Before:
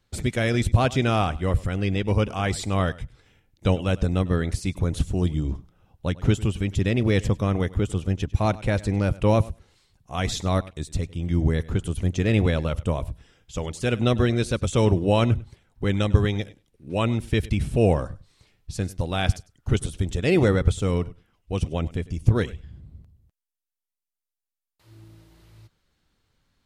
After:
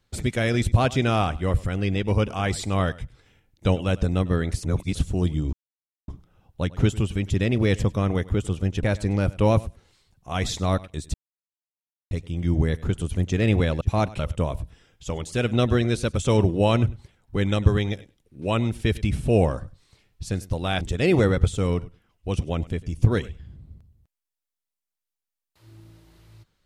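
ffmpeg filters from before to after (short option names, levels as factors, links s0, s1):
-filter_complex "[0:a]asplit=9[s0][s1][s2][s3][s4][s5][s6][s7][s8];[s0]atrim=end=4.632[s9];[s1]atrim=start=4.628:end=4.952,asetpts=PTS-STARTPTS,areverse[s10];[s2]atrim=start=4.948:end=5.53,asetpts=PTS-STARTPTS,afade=t=out:st=0.578:d=0.004:c=hsin,apad=pad_dur=0.55[s11];[s3]atrim=start=5.53:end=8.282,asetpts=PTS-STARTPTS,afade=t=in:d=0.004:c=hsin[s12];[s4]atrim=start=8.658:end=10.97,asetpts=PTS-STARTPTS,afade=t=out:st=2.308:d=0.004:c=hsin,apad=pad_dur=0.97[s13];[s5]atrim=start=10.97:end=12.672,asetpts=PTS-STARTPTS,afade=t=in:d=0.004:c=hsin[s14];[s6]atrim=start=8.278:end=8.662[s15];[s7]atrim=start=12.668:end=19.292[s16];[s8]atrim=start=20.048[s17];[s9][s10]acrossfade=d=0.004:c1=hsin:c2=hsin[s18];[s11][s12]concat=n=2:v=0:a=1[s19];[s18][s19]acrossfade=d=0.004:c1=hsin:c2=hsin[s20];[s13][s14]concat=n=2:v=0:a=1[s21];[s20][s21]acrossfade=d=0.004:c1=hsin:c2=hsin[s22];[s22][s15]acrossfade=d=0.004:c1=hsin:c2=hsin[s23];[s23][s16]acrossfade=d=0.004:c1=hsin:c2=hsin[s24];[s24][s17]acrossfade=d=0.004:c1=hsin:c2=hsin"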